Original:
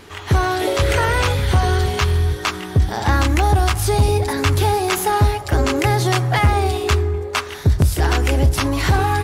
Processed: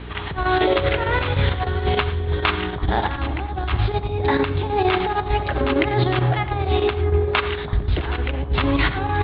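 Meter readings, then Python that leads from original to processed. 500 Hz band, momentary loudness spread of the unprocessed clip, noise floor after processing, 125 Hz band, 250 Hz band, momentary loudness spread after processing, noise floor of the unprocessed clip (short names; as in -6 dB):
-1.0 dB, 4 LU, -29 dBFS, -5.5 dB, -1.5 dB, 5 LU, -31 dBFS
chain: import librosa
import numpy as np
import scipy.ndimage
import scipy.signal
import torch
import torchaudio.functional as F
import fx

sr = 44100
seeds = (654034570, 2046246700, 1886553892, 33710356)

y = scipy.signal.sosfilt(scipy.signal.butter(12, 3900.0, 'lowpass', fs=sr, output='sos'), x)
y = fx.hum_notches(y, sr, base_hz=60, count=6)
y = fx.over_compress(y, sr, threshold_db=-20.0, ratio=-0.5)
y = fx.add_hum(y, sr, base_hz=60, snr_db=14)
y = fx.chopper(y, sr, hz=6.6, depth_pct=60, duty_pct=85)
y = fx.echo_alternate(y, sr, ms=330, hz=1100.0, feedback_pct=57, wet_db=-13.0)
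y = fx.rev_gated(y, sr, seeds[0], gate_ms=130, shape='rising', drr_db=11.5)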